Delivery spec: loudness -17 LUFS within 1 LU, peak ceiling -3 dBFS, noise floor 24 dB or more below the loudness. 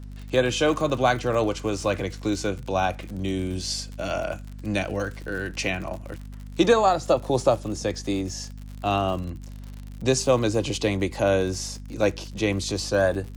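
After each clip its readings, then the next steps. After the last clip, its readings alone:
ticks 64/s; hum 50 Hz; harmonics up to 250 Hz; hum level -36 dBFS; loudness -25.0 LUFS; peak -8.0 dBFS; loudness target -17.0 LUFS
-> de-click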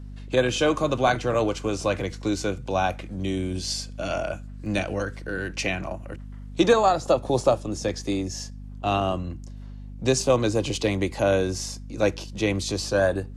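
ticks 0.15/s; hum 50 Hz; harmonics up to 250 Hz; hum level -36 dBFS
-> de-hum 50 Hz, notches 5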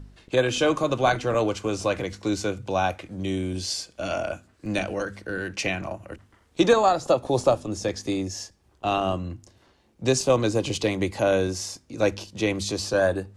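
hum none; loudness -25.5 LUFS; peak -8.0 dBFS; loudness target -17.0 LUFS
-> gain +8.5 dB; limiter -3 dBFS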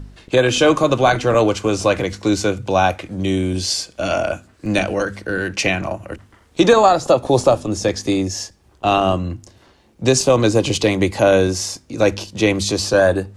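loudness -17.5 LUFS; peak -3.0 dBFS; noise floor -53 dBFS

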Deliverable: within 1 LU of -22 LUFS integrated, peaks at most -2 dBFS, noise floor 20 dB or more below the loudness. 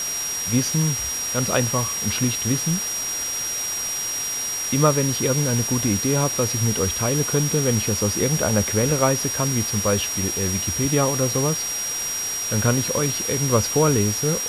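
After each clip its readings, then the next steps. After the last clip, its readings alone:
steady tone 5700 Hz; tone level -25 dBFS; noise floor -27 dBFS; noise floor target -41 dBFS; loudness -21.0 LUFS; peak -4.0 dBFS; loudness target -22.0 LUFS
-> notch 5700 Hz, Q 30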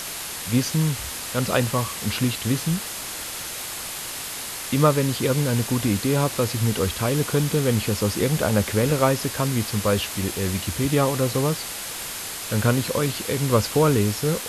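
steady tone none; noise floor -33 dBFS; noise floor target -43 dBFS
-> denoiser 10 dB, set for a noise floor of -33 dBFS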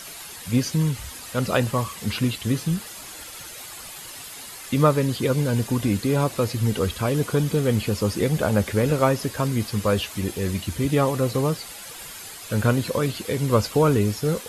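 noise floor -39 dBFS; noise floor target -44 dBFS
-> denoiser 6 dB, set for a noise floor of -39 dBFS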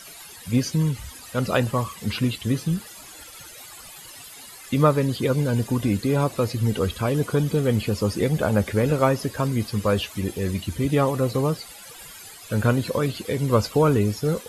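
noise floor -43 dBFS; noise floor target -44 dBFS
-> denoiser 6 dB, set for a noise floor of -43 dBFS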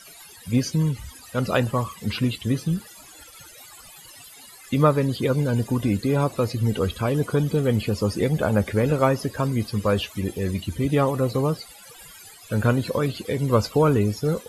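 noise floor -46 dBFS; loudness -23.5 LUFS; peak -5.0 dBFS; loudness target -22.0 LUFS
-> gain +1.5 dB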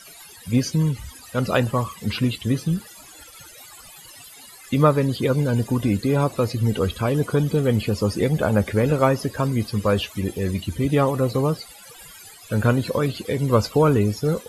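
loudness -22.0 LUFS; peak -3.5 dBFS; noise floor -45 dBFS

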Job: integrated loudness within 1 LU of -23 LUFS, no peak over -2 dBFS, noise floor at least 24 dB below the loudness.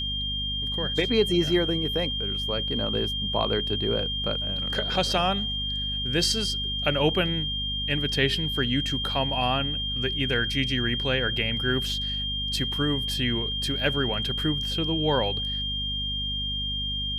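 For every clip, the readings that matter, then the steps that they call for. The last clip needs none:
hum 50 Hz; harmonics up to 250 Hz; hum level -32 dBFS; steady tone 3200 Hz; tone level -28 dBFS; loudness -25.5 LUFS; peak -9.0 dBFS; loudness target -23.0 LUFS
-> notches 50/100/150/200/250 Hz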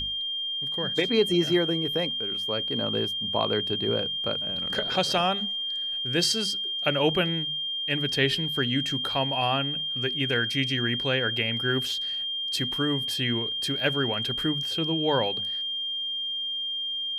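hum none; steady tone 3200 Hz; tone level -28 dBFS
-> notch 3200 Hz, Q 30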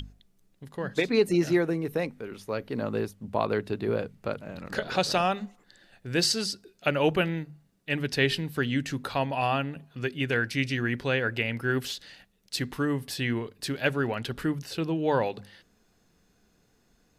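steady tone none; loudness -28.5 LUFS; peak -10.5 dBFS; loudness target -23.0 LUFS
-> gain +5.5 dB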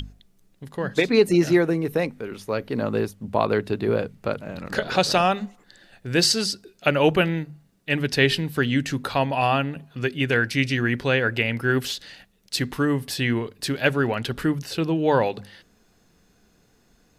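loudness -23.0 LUFS; peak -5.0 dBFS; noise floor -61 dBFS

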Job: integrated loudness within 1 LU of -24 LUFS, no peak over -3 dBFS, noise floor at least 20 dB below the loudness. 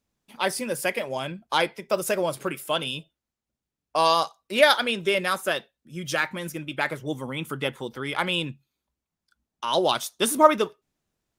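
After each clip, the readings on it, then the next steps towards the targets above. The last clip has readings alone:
loudness -25.0 LUFS; peak -1.5 dBFS; loudness target -24.0 LUFS
-> gain +1 dB; limiter -3 dBFS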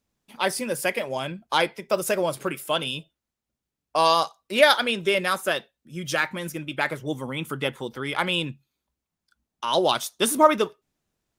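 loudness -24.5 LUFS; peak -3.0 dBFS; noise floor -86 dBFS

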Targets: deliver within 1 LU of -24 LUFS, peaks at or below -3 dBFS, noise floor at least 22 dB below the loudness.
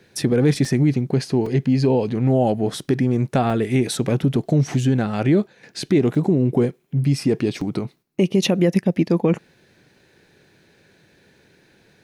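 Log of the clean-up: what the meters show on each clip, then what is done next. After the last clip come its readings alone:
dropouts 5; longest dropout 3.7 ms; loudness -20.0 LUFS; peak -7.0 dBFS; loudness target -24.0 LUFS
-> interpolate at 0.65/1.46/3.5/6.15/7.61, 3.7 ms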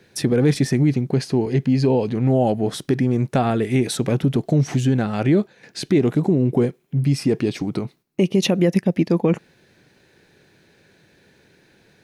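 dropouts 0; loudness -20.0 LUFS; peak -7.0 dBFS; loudness target -24.0 LUFS
-> gain -4 dB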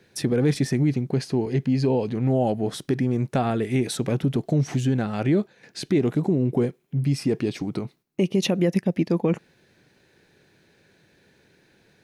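loudness -24.0 LUFS; peak -11.0 dBFS; noise floor -62 dBFS

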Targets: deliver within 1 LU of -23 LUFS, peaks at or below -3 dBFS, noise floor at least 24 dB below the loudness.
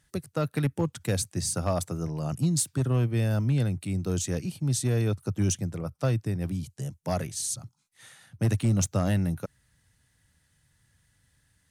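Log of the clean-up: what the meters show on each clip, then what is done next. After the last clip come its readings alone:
clipped 0.6%; flat tops at -18.0 dBFS; loudness -28.5 LUFS; peak -18.0 dBFS; loudness target -23.0 LUFS
-> clip repair -18 dBFS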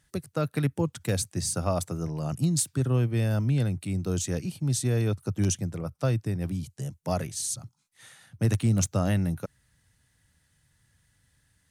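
clipped 0.0%; loudness -28.5 LUFS; peak -10.0 dBFS; loudness target -23.0 LUFS
-> gain +5.5 dB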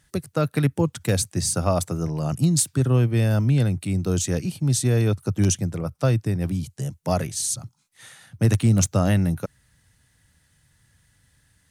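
loudness -23.0 LUFS; peak -4.5 dBFS; noise floor -65 dBFS

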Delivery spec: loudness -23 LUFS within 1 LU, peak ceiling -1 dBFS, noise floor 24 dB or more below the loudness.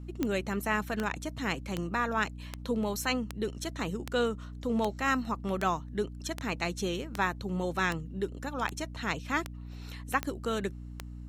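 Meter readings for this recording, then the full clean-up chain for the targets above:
clicks 15; hum 60 Hz; harmonics up to 300 Hz; hum level -40 dBFS; loudness -32.5 LUFS; peak -12.5 dBFS; loudness target -23.0 LUFS
-> de-click; notches 60/120/180/240/300 Hz; gain +9.5 dB

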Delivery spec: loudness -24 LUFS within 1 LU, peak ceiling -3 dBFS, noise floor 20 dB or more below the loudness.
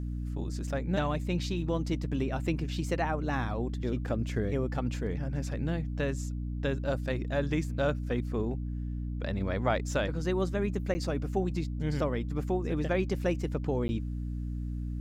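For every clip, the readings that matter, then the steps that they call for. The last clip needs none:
dropouts 2; longest dropout 10 ms; hum 60 Hz; harmonics up to 300 Hz; hum level -32 dBFS; loudness -32.0 LUFS; peak -15.0 dBFS; loudness target -24.0 LUFS
-> interpolate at 10.94/13.88, 10 ms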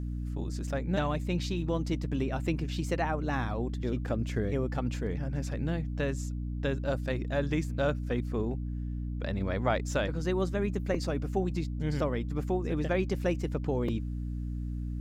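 dropouts 0; hum 60 Hz; harmonics up to 300 Hz; hum level -32 dBFS
-> de-hum 60 Hz, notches 5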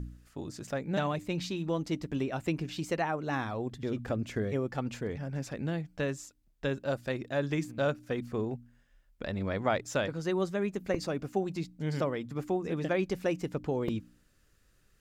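hum none; loudness -33.5 LUFS; peak -16.0 dBFS; loudness target -24.0 LUFS
-> gain +9.5 dB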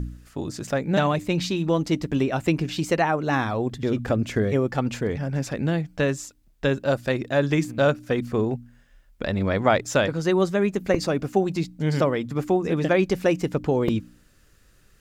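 loudness -24.0 LUFS; peak -6.5 dBFS; noise floor -58 dBFS

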